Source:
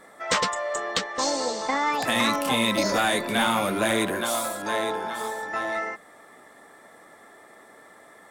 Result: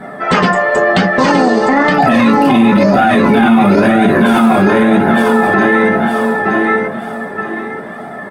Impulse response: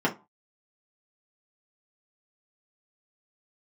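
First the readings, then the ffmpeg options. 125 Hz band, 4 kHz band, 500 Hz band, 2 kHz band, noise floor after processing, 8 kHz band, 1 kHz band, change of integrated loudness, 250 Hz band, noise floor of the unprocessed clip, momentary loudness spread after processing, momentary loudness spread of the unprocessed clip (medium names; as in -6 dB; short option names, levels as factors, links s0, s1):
+21.0 dB, +3.5 dB, +15.5 dB, +14.0 dB, -27 dBFS, no reading, +14.5 dB, +14.5 dB, +21.0 dB, -51 dBFS, 12 LU, 7 LU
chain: -filter_complex "[0:a]bass=f=250:g=8,treble=f=4000:g=-3,aecho=1:1:918|1836|2754|3672:0.531|0.175|0.0578|0.0191[s0];[1:a]atrim=start_sample=2205,asetrate=40131,aresample=44100[s1];[s0][s1]afir=irnorm=-1:irlink=0,flanger=delay=1.3:depth=1.5:regen=44:speed=0.99:shape=triangular,alimiter=level_in=3.76:limit=0.891:release=50:level=0:latency=1,volume=0.891"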